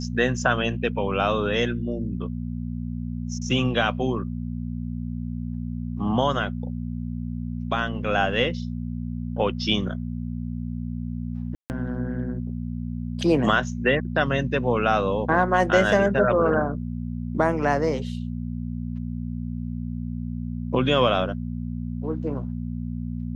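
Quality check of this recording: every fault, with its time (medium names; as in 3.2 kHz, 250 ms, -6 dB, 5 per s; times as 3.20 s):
hum 60 Hz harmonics 4 -30 dBFS
11.55–11.70 s: dropout 149 ms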